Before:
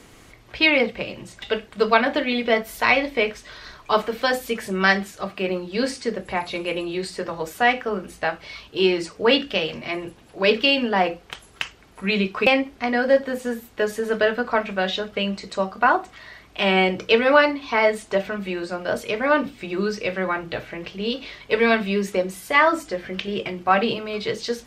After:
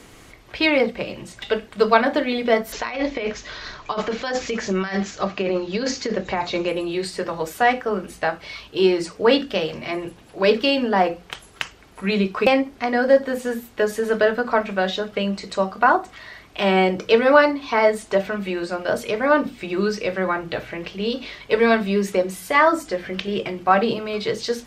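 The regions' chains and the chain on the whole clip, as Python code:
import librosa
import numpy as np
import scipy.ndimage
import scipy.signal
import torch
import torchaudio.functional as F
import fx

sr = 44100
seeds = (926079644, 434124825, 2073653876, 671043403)

y = fx.chain(x, sr, fx.over_compress(threshold_db=-25.0, ratio=-1.0),
    fx.resample_bad(factor=3, down='none', up='filtered'), at=(2.72, 6.69))
y = fx.hum_notches(y, sr, base_hz=60, count=4)
y = fx.dynamic_eq(y, sr, hz=2700.0, q=1.3, threshold_db=-35.0, ratio=4.0, max_db=-7)
y = y * 10.0 ** (2.5 / 20.0)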